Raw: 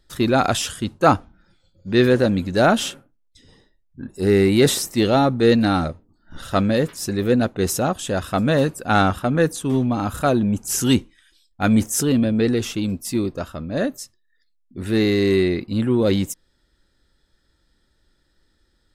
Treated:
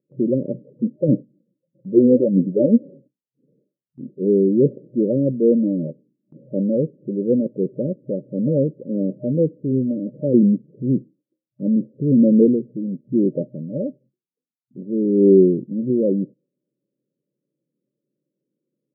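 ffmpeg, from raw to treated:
ffmpeg -i in.wav -filter_complex "[0:a]asettb=1/sr,asplit=3[link_01][link_02][link_03];[link_01]atrim=end=0.544[link_04];[link_02]atrim=start=0.54:end=2.83,asetpts=PTS-STARTPTS,afade=type=in:duration=0.004:curve=qsin,afade=type=out:start_time=2.286:duration=0.004:curve=qsin,aphaser=in_gain=1:out_gain=1:delay=4.3:decay=0.62:speed=1.6:type=sinusoidal[link_05];[link_03]atrim=start=2.826[link_06];[link_04][link_05]acrossfade=duration=0.004:curve1=hsin:curve2=qsin[link_07];[link_07][link_06]acrossfade=duration=0.004:curve1=qsin:curve2=hsin,asettb=1/sr,asplit=3[link_08][link_09][link_10];[link_08]atrim=end=10.344[link_11];[link_09]atrim=start=10.34:end=15.9,asetpts=PTS-STARTPTS,afade=type=in:duration=0.004:curve=qsin,afade=type=out:start_time=5.556:duration=0.004:curve=qsin,aphaser=in_gain=1:out_gain=1:delay=1.3:decay=0.54:speed=1:type=sinusoidal[link_12];[link_10]atrim=start=15.896[link_13];[link_11][link_12]acrossfade=duration=0.004:curve1=hsin:curve2=qsin[link_14];[link_14][link_13]acrossfade=duration=0.004:curve1=qsin:curve2=hsin,afftfilt=real='re*between(b*sr/4096,120,610)':imag='im*between(b*sr/4096,120,610)':win_size=4096:overlap=0.75,agate=range=-7dB:threshold=-50dB:ratio=16:detection=peak" out.wav

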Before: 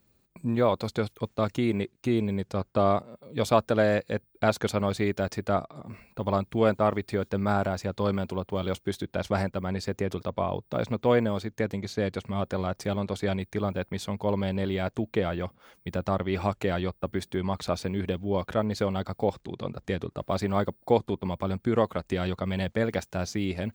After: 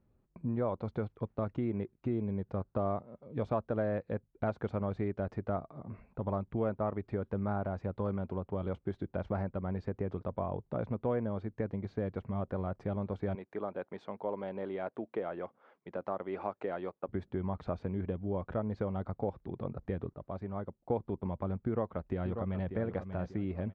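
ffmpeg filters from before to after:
ffmpeg -i in.wav -filter_complex "[0:a]asettb=1/sr,asplit=3[link_01][link_02][link_03];[link_01]atrim=end=13.354[link_04];[link_02]atrim=start=13.35:end=17.09,asetpts=PTS-STARTPTS,afade=type=in:duration=0.004:curve=qsin,afade=type=out:start_time=3.736:duration=0.004:curve=qsin,highpass=360[link_05];[link_03]atrim=start=17.086[link_06];[link_04][link_05]acrossfade=duration=0.004:curve1=hsin:curve2=qsin[link_07];[link_07][link_06]acrossfade=duration=0.004:curve1=qsin:curve2=hsin,asplit=2[link_08][link_09];[link_09]afade=type=in:start_time=21.58:duration=0.01,afade=type=out:start_time=22.72:duration=0.01,aecho=0:1:590|1180|1770|2360:0.316228|0.11068|0.0387379|0.0135583[link_10];[link_08][link_10]amix=inputs=2:normalize=0,asplit=3[link_11][link_12][link_13];[link_11]atrim=end=20.142[link_14];[link_12]atrim=start=20.138:end=20.902,asetpts=PTS-STARTPTS,volume=-8.5dB[link_15];[link_13]atrim=start=20.898[link_16];[link_14][link_15]acrossfade=duration=0.004:curve1=hsin:curve2=hsin[link_17];[link_17][link_16]acrossfade=duration=0.004:curve1=hsin:curve2=hsin,lowpass=1300,lowshelf=frequency=79:gain=7.5,acompressor=threshold=-29dB:ratio=2,volume=-4dB" out.wav

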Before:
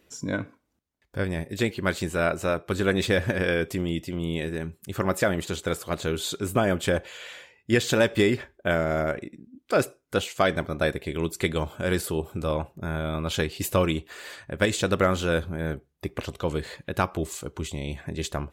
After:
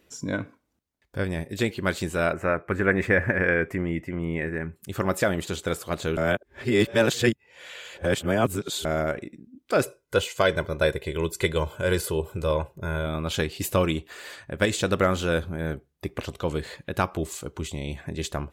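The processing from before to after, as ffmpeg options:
ffmpeg -i in.wav -filter_complex "[0:a]asettb=1/sr,asplit=3[link_01][link_02][link_03];[link_01]atrim=end=2.334[link_04];[link_02]atrim=start=2.33:end=4.76,asetpts=PTS-STARTPTS,afade=type=in:duration=0.004:curve=qsin,afade=type=out:start_time=2.426:duration=0.004:curve=qsin,highshelf=frequency=2700:width_type=q:width=3:gain=-11[link_05];[link_03]atrim=start=4.756[link_06];[link_04][link_05]acrossfade=duration=0.004:curve1=hsin:curve2=qsin[link_07];[link_07][link_06]acrossfade=duration=0.004:curve1=qsin:curve2=hsin,asettb=1/sr,asplit=3[link_08][link_09][link_10];[link_08]atrim=end=9.834[link_11];[link_09]atrim=start=9.83:end=13.06,asetpts=PTS-STARTPTS,afade=type=in:duration=0.004:curve=qsin,afade=type=out:start_time=3.226:duration=0.004:curve=qsin,aecho=1:1:2:0.57,atrim=end_sample=142443[link_12];[link_10]atrim=start=13.056[link_13];[link_11][link_12]acrossfade=duration=0.004:curve1=hsin:curve2=qsin[link_14];[link_14][link_13]acrossfade=duration=0.004:curve1=qsin:curve2=hsin,asplit=3[link_15][link_16][link_17];[link_15]atrim=end=6.172[link_18];[link_16]atrim=start=6.168:end=8.852,asetpts=PTS-STARTPTS,areverse[link_19];[link_17]atrim=start=8.848[link_20];[link_18][link_19]acrossfade=duration=0.004:curve1=hsin:curve2=hsin[link_21];[link_21][link_20]acrossfade=duration=0.004:curve1=hsin:curve2=hsin" out.wav

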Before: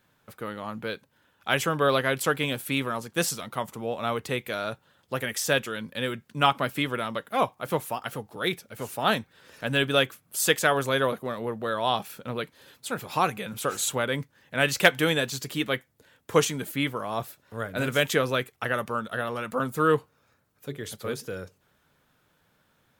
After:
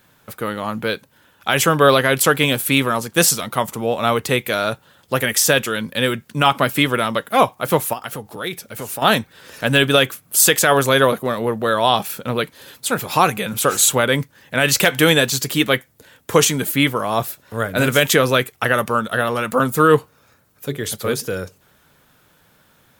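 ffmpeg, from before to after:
ffmpeg -i in.wav -filter_complex "[0:a]asettb=1/sr,asplit=3[link_01][link_02][link_03];[link_01]atrim=end=7.934[link_04];[link_02]atrim=start=7.93:end=9.02,asetpts=PTS-STARTPTS,afade=type=in:duration=0.004:curve=qsin,afade=type=out:start_time=1.086:duration=0.004:curve=qsin,acompressor=threshold=-40dB:ratio=2:attack=3.2:release=140:knee=1:detection=peak[link_05];[link_03]atrim=start=9.016[link_06];[link_04][link_05]acrossfade=duration=0.004:curve1=hsin:curve2=qsin[link_07];[link_07][link_06]acrossfade=duration=0.004:curve1=qsin:curve2=hsin,highshelf=frequency=6700:gain=6,alimiter=level_in=11.5dB:limit=-1dB:release=50:level=0:latency=1,volume=-1dB" out.wav

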